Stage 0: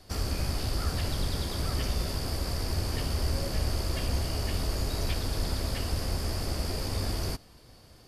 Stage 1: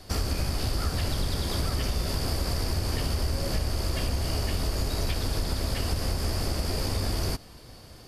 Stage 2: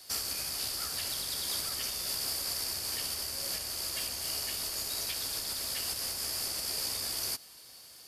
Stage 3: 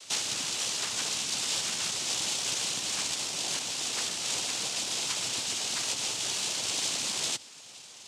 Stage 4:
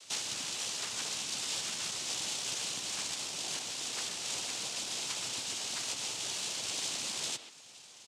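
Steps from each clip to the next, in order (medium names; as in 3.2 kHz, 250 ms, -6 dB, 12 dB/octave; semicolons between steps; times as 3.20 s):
compression, threshold -30 dBFS, peak gain reduction 7.5 dB; trim +6.5 dB
tilt EQ +4.5 dB/octave; trim -9 dB
noise-vocoded speech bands 4; trim +5.5 dB
speakerphone echo 130 ms, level -10 dB; trim -5.5 dB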